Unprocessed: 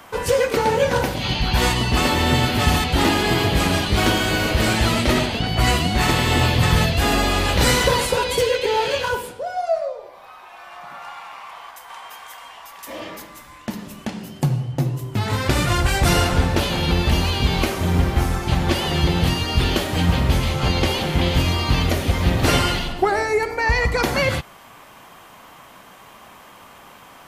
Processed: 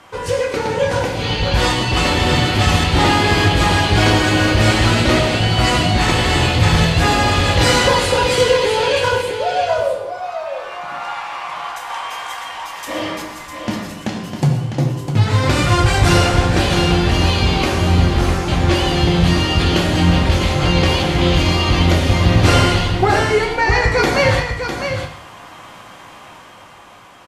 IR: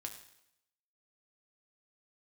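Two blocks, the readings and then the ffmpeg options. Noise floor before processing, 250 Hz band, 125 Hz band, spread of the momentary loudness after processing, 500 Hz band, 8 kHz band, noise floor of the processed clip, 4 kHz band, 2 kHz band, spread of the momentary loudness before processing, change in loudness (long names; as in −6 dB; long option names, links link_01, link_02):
−45 dBFS, +4.5 dB, +5.0 dB, 12 LU, +4.5 dB, +2.5 dB, −39 dBFS, +4.0 dB, +4.5 dB, 17 LU, +4.0 dB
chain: -filter_complex "[0:a]lowpass=8300,dynaudnorm=framelen=260:gausssize=11:maxgain=11.5dB,asoftclip=type=tanh:threshold=-3dB,aecho=1:1:653:0.422[link_01];[1:a]atrim=start_sample=2205[link_02];[link_01][link_02]afir=irnorm=-1:irlink=0,volume=3dB"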